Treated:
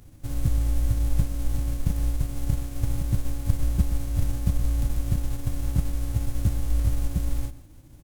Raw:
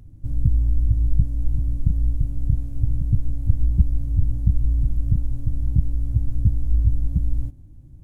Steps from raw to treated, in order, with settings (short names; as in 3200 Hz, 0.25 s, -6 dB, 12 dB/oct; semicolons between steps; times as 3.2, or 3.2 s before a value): spectral whitening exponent 0.6; outdoor echo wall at 21 m, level -15 dB; gain -5.5 dB